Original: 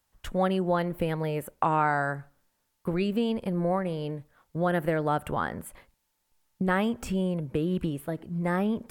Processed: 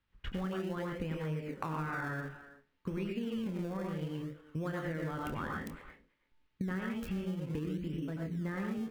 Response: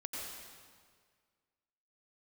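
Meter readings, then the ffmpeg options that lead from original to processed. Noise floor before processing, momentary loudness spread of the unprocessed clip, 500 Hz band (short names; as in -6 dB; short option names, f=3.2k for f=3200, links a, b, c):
-76 dBFS, 9 LU, -12.0 dB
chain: -filter_complex "[0:a]highshelf=f=3.5k:g=8,asplit=2[a][b];[b]adelay=330,highpass=300,lowpass=3.4k,asoftclip=type=hard:threshold=-18.5dB,volume=-21dB[c];[a][c]amix=inputs=2:normalize=0[d];[1:a]atrim=start_sample=2205,atrim=end_sample=6615[e];[d][e]afir=irnorm=-1:irlink=0,acrossover=split=3200[f][g];[g]acrusher=bits=4:mix=0:aa=0.000001[h];[f][h]amix=inputs=2:normalize=0,equalizer=f=710:t=o:w=1.1:g=-12,asplit=2[i][j];[j]adelay=26,volume=-9dB[k];[i][k]amix=inputs=2:normalize=0,asplit=2[l][m];[m]acrusher=samples=30:mix=1:aa=0.000001:lfo=1:lforange=30:lforate=0.59,volume=-12dB[n];[l][n]amix=inputs=2:normalize=0,acompressor=threshold=-36dB:ratio=6,volume=2dB"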